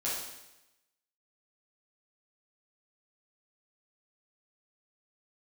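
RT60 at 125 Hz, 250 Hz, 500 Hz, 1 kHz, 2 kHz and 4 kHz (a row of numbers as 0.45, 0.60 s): 0.95, 0.95, 0.95, 0.95, 0.95, 0.95 s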